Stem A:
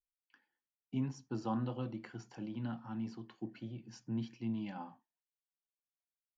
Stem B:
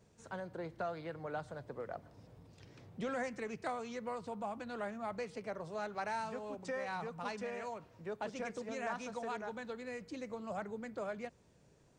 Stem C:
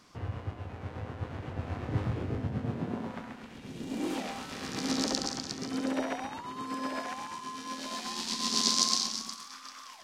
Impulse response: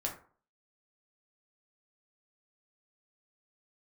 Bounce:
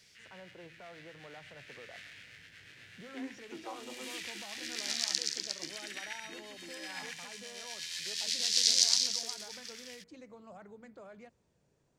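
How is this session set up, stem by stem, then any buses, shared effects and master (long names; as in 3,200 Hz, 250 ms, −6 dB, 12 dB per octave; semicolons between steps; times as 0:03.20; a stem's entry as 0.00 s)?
−4.0 dB, 2.20 s, no send, Chebyshev high-pass filter 260 Hz, order 10
−7.0 dB, 0.00 s, no send, hum removal 54.72 Hz, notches 5; brickwall limiter −36 dBFS, peak gain reduction 8.5 dB
+1.5 dB, 0.00 s, no send, Butterworth high-pass 1,700 Hz 48 dB per octave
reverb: not used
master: no processing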